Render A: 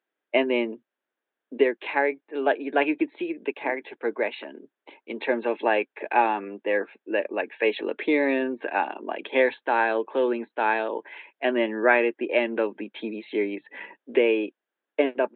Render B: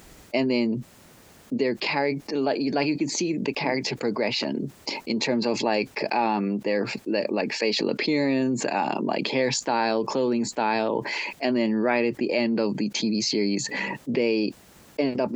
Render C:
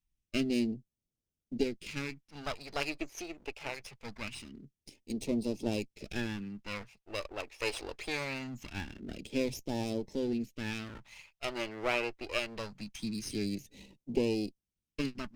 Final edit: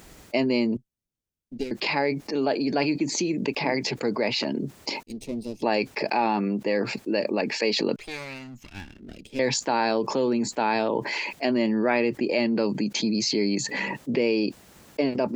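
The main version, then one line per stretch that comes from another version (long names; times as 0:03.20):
B
0:00.77–0:01.71: punch in from C
0:05.03–0:05.62: punch in from C
0:07.96–0:09.39: punch in from C
not used: A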